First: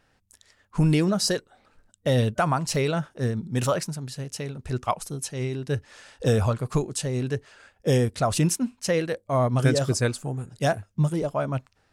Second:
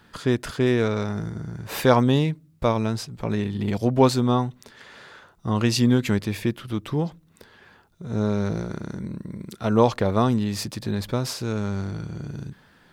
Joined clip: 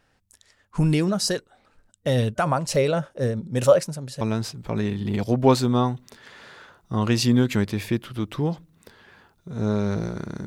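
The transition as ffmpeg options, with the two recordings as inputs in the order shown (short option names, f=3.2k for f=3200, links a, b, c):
-filter_complex "[0:a]asettb=1/sr,asplit=3[a][b][c];[a]atrim=end=2.454[d];[b]atrim=start=2.45:end=4.21,asetpts=PTS-STARTPTS,afade=t=in:d=0.004:c=qsin,afade=t=out:st=1.756:d=0.004:c=qsin,equalizer=f=550:w=4:g=12.5[e];[c]atrim=start=4.206[f];[d][e]acrossfade=d=0.004:c1=hsin:c2=qsin[g];[g][f]acrossfade=d=0.004:c1=qsin:c2=hsin,apad=whole_dur=10.46,atrim=end=10.46,atrim=end=4.212[h];[1:a]atrim=start=2.748:end=9[i];[h][i]acrossfade=d=0.004:c1=hsin:c2=hsin"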